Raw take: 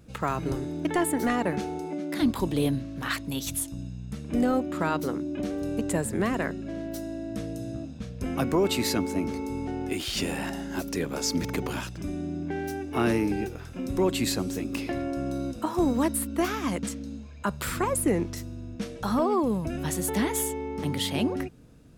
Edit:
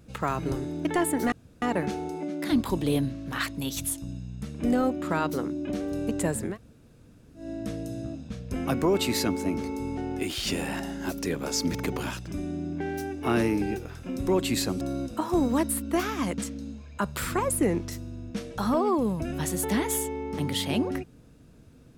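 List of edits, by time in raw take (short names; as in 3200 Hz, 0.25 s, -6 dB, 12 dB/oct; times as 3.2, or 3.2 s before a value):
1.32 insert room tone 0.30 s
6.2–7.12 room tone, crossfade 0.16 s
14.51–15.26 cut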